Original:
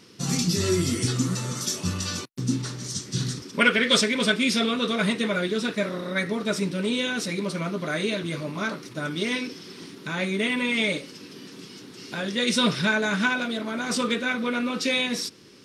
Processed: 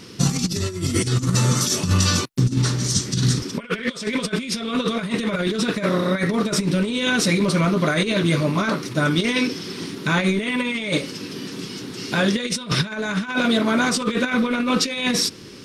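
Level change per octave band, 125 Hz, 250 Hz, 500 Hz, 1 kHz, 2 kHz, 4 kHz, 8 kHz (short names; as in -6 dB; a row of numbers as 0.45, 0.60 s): +9.0, +5.0, +3.5, +4.5, +1.5, +2.5, +5.5 dB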